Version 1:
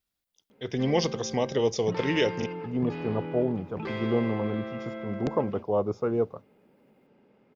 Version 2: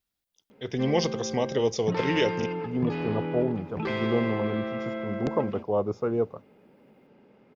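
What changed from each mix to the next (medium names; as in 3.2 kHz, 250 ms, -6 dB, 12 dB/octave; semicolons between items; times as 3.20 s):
background +4.5 dB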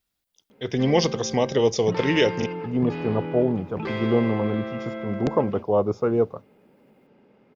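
speech +5.0 dB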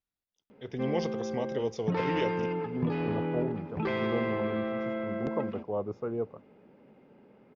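speech -11.5 dB; master: add treble shelf 3.8 kHz -10 dB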